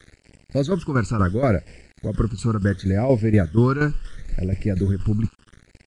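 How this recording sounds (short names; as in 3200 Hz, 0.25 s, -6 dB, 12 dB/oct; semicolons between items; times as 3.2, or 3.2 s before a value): a quantiser's noise floor 8-bit, dither none; tremolo saw down 4.2 Hz, depth 65%; phasing stages 12, 0.72 Hz, lowest notch 600–1200 Hz; Nellymoser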